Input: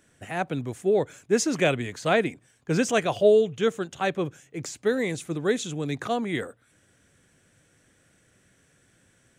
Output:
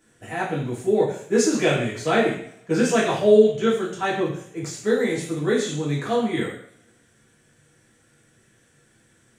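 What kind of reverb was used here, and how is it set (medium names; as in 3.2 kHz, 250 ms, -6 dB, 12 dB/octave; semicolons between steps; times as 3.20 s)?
two-slope reverb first 0.59 s, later 1.7 s, from -27 dB, DRR -7 dB; trim -5 dB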